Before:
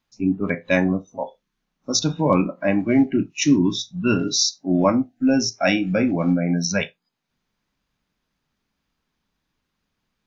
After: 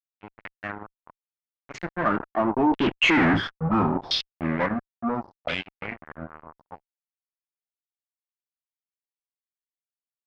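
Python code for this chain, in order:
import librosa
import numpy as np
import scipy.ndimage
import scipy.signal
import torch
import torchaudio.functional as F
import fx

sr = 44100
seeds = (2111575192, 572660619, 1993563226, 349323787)

y = fx.doppler_pass(x, sr, speed_mps=36, closest_m=1.8, pass_at_s=3.21)
y = fx.fuzz(y, sr, gain_db=45.0, gate_db=-50.0)
y = fx.filter_lfo_lowpass(y, sr, shape='saw_down', hz=0.73, low_hz=760.0, high_hz=3300.0, q=3.8)
y = y * librosa.db_to_amplitude(-6.0)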